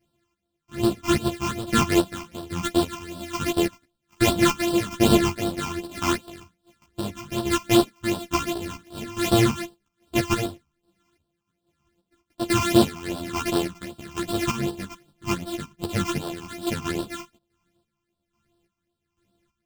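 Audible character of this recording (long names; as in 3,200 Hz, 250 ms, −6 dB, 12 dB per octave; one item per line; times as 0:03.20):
a buzz of ramps at a fixed pitch in blocks of 128 samples
phaser sweep stages 8, 2.6 Hz, lowest notch 510–2,100 Hz
chopped level 1.2 Hz, depth 65%, duty 40%
a shimmering, thickened sound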